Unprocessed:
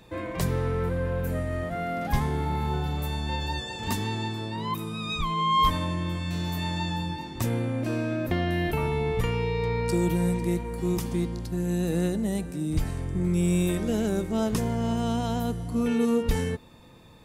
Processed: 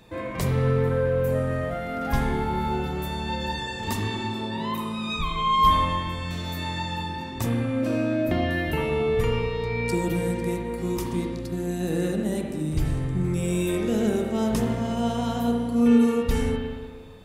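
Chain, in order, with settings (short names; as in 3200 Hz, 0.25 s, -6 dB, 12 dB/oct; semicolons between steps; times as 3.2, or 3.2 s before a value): spring tank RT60 1.6 s, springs 38/59 ms, chirp 35 ms, DRR 1 dB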